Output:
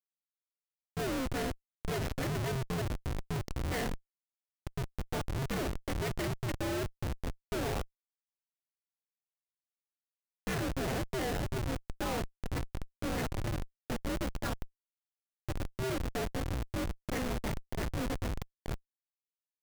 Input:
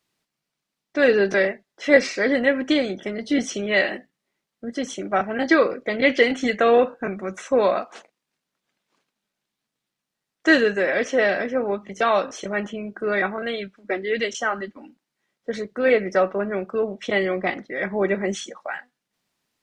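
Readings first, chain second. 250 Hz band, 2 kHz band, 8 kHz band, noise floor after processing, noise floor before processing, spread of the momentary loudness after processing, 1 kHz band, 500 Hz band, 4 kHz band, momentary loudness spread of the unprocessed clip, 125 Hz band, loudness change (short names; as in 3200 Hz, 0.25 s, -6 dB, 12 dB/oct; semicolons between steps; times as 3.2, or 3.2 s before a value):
-13.0 dB, -19.0 dB, -6.5 dB, under -85 dBFS, -83 dBFS, 8 LU, -13.5 dB, -18.5 dB, -11.5 dB, 14 LU, n/a, -14.5 dB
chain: rattling part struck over -34 dBFS, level -26 dBFS; ring modulator 130 Hz; Schmitt trigger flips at -24.5 dBFS; gain -6.5 dB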